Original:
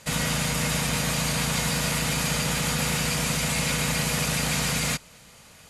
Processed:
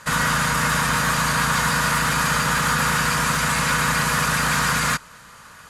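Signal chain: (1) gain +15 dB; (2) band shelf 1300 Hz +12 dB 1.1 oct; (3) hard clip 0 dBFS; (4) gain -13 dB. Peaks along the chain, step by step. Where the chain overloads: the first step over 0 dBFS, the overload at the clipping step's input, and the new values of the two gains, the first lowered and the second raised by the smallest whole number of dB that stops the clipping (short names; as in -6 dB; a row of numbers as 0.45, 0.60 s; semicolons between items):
+2.0, +6.0, 0.0, -13.0 dBFS; step 1, 6.0 dB; step 1 +9 dB, step 4 -7 dB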